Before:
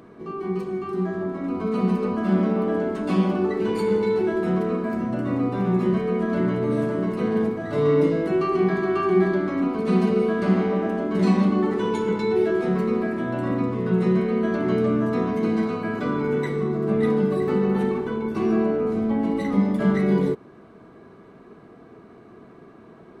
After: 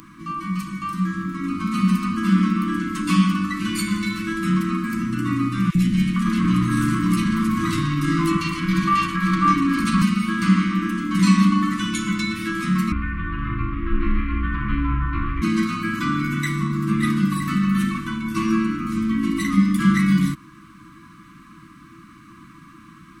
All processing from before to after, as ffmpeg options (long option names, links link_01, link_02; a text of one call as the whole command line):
ffmpeg -i in.wav -filter_complex "[0:a]asettb=1/sr,asplit=3[link_01][link_02][link_03];[link_01]atrim=end=5.704[link_04];[link_02]atrim=start=5.7:end=10.02,asetpts=PTS-STARTPTS,afade=type=in:duration=0.004:curve=qsin,afade=type=out:start_time=4.316:duration=0.004:curve=qsin,acompressor=threshold=-23dB:ratio=4:attack=3.2:release=140:knee=1:detection=peak,aeval=exprs='0.178*sin(PI/2*1.58*val(0)/0.178)':channel_layout=same,acrossover=split=490|1900[link_05][link_06][link_07];[link_05]adelay=50[link_08];[link_06]adelay=460[link_09];[link_08][link_09][link_07]amix=inputs=3:normalize=0,atrim=end_sample=190512[link_10];[link_03]atrim=start=10.016[link_11];[link_04][link_10]acrossfade=duration=0.004:curve1=hsin:curve2=qsin[link_12];[link_12][link_11]acrossfade=duration=0.004:curve1=qsin:curve2=hsin,asettb=1/sr,asplit=3[link_13][link_14][link_15];[link_13]atrim=end=12.924[link_16];[link_14]atrim=start=12.92:end=15.42,asetpts=PTS-STARTPTS,afade=type=in:duration=0.004:curve=qsin,afade=type=out:start_time=2.496:duration=0.004:curve=qsin,lowpass=frequency=2700:width=0.5412,lowpass=frequency=2700:width=1.3066,aeval=exprs='val(0)*sin(2*PI*160*n/s)':channel_layout=same[link_17];[link_15]atrim=start=15.416[link_18];[link_16][link_17]acrossfade=duration=0.004:curve1=hsin:curve2=qsin[link_19];[link_19][link_18]acrossfade=duration=0.004:curve1=qsin:curve2=hsin,equalizer=frequency=100:width_type=o:width=0.67:gain=-7,equalizer=frequency=250:width_type=o:width=0.67:gain=-9,equalizer=frequency=1600:width_type=o:width=0.67:gain=-4,equalizer=frequency=4000:width_type=o:width=0.67:gain=-4,afftfilt=real='re*(1-between(b*sr/4096,340,1000))':imag='im*(1-between(b*sr/4096,340,1000))':win_size=4096:overlap=0.75,highshelf=frequency=4000:gain=10.5,volume=9dB" out.wav